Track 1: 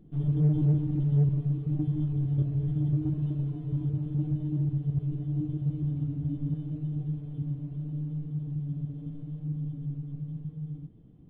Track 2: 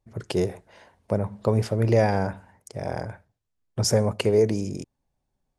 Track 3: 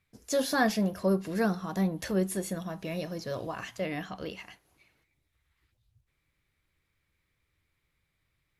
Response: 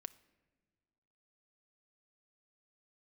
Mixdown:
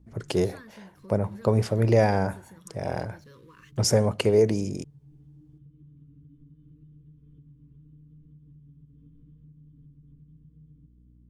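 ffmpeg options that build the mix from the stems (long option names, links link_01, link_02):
-filter_complex "[0:a]aeval=exprs='val(0)+0.00794*(sin(2*PI*60*n/s)+sin(2*PI*2*60*n/s)/2+sin(2*PI*3*60*n/s)/3+sin(2*PI*4*60*n/s)/4+sin(2*PI*5*60*n/s)/5)':channel_layout=same,acompressor=threshold=-36dB:ratio=12,volume=-12.5dB[link_01];[1:a]volume=0dB[link_02];[2:a]bandreject=frequency=5000:width=9.3,aeval=exprs='sgn(val(0))*max(abs(val(0))-0.00224,0)':channel_layout=same,volume=-12dB,asplit=2[link_03][link_04];[link_04]apad=whole_len=498098[link_05];[link_01][link_05]sidechaincompress=threshold=-57dB:ratio=8:attack=16:release=118[link_06];[link_06][link_03]amix=inputs=2:normalize=0,asuperstop=centerf=710:order=8:qfactor=1.5,acompressor=threshold=-45dB:ratio=6,volume=0dB[link_07];[link_02][link_07]amix=inputs=2:normalize=0"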